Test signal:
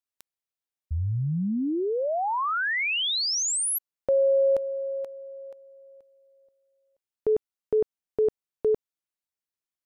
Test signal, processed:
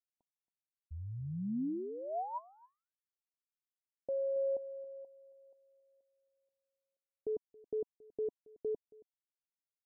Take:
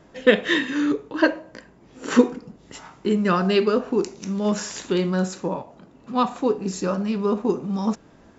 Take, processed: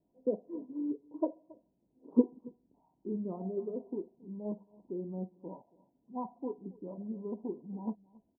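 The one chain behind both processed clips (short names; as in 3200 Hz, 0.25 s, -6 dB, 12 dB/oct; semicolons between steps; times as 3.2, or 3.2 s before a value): formant sharpening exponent 1.5; rippled Chebyshev low-pass 1000 Hz, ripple 6 dB; echo 0.275 s -15.5 dB; upward expander 1.5:1, over -42 dBFS; gain -7.5 dB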